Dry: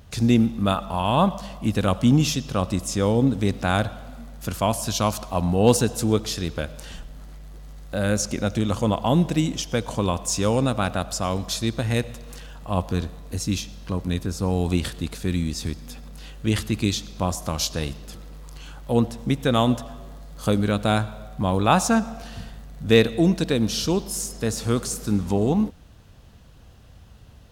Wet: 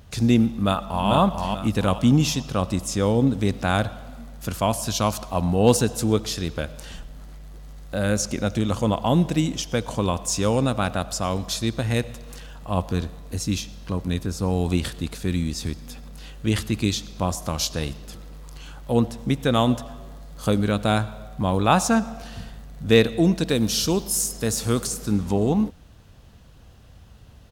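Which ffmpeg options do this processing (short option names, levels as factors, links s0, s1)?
-filter_complex "[0:a]asplit=2[s0][s1];[s1]afade=t=in:st=0.5:d=0.01,afade=t=out:st=1.1:d=0.01,aecho=0:1:440|880|1320|1760|2200:0.668344|0.23392|0.0818721|0.0286552|0.0100293[s2];[s0][s2]amix=inputs=2:normalize=0,asettb=1/sr,asplit=3[s3][s4][s5];[s3]atrim=end=23.494[s6];[s4]atrim=start=23.49:end=24.87,asetpts=PTS-STARTPTS,afade=t=in:d=0.004:c=qsin,afade=t=out:st=1.376:d=0.004:c=qsin,highshelf=f=6600:g=9[s7];[s5]atrim=start=24.866[s8];[s6][s7]acrossfade=d=0.004:c1=hsin:c2=qsin[s9];[s9][s8]acrossfade=d=0.004:c1=qsin:c2=hsin"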